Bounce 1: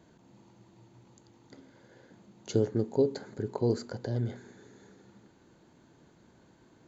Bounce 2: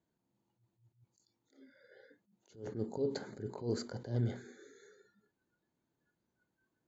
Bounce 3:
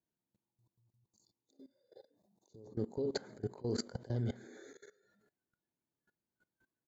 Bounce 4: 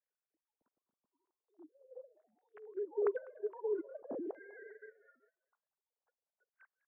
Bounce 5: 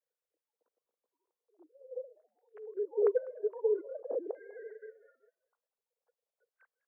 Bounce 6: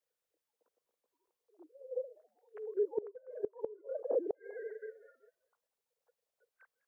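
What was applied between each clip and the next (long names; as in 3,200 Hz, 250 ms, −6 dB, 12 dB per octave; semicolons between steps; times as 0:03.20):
noise reduction from a noise print of the clip's start 24 dB; brickwall limiter −23.5 dBFS, peak gain reduction 9.5 dB; level that may rise only so fast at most 160 dB per second
echo with shifted repeats 137 ms, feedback 51%, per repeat +100 Hz, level −22.5 dB; output level in coarse steps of 20 dB; gain on a spectral selection 0:00.48–0:02.77, 1,200–3,500 Hz −20 dB; level +6 dB
three sine waves on the formant tracks; auto-filter low-pass saw down 0.46 Hz 640–2,000 Hz; echo with shifted repeats 199 ms, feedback 31%, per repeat +110 Hz, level −22 dB; level −1.5 dB
high-pass with resonance 480 Hz, resonance Q 5.9; level −3.5 dB
gate with flip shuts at −25 dBFS, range −24 dB; level +3 dB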